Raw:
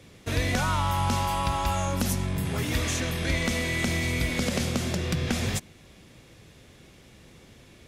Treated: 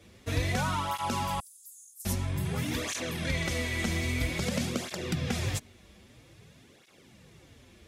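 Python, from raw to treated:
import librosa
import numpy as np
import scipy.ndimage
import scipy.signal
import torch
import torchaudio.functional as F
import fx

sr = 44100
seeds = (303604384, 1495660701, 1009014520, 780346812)

y = fx.cheby2_highpass(x, sr, hz=2000.0, order=4, stop_db=70, at=(1.4, 2.06))
y = fx.flanger_cancel(y, sr, hz=0.51, depth_ms=7.8)
y = F.gain(torch.from_numpy(y), -1.0).numpy()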